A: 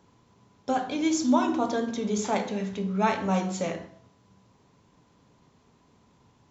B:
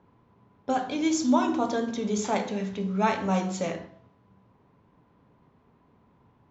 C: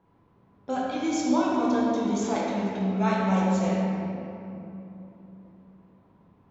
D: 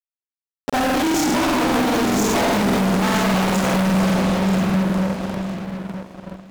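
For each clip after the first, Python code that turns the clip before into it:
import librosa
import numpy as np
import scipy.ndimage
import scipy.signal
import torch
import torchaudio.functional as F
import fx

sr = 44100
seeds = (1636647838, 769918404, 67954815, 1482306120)

y1 = fx.env_lowpass(x, sr, base_hz=1900.0, full_db=-23.5)
y2 = fx.room_shoebox(y1, sr, seeds[0], volume_m3=150.0, walls='hard', distance_m=0.7)
y2 = F.gain(torch.from_numpy(y2), -5.5).numpy()
y3 = fx.fuzz(y2, sr, gain_db=48.0, gate_db=-45.0)
y3 = fx.echo_feedback(y3, sr, ms=943, feedback_pct=18, wet_db=-8.0)
y3 = fx.buffer_crackle(y3, sr, first_s=0.65, period_s=0.2, block=2048, kind='repeat')
y3 = F.gain(torch.from_numpy(y3), -4.5).numpy()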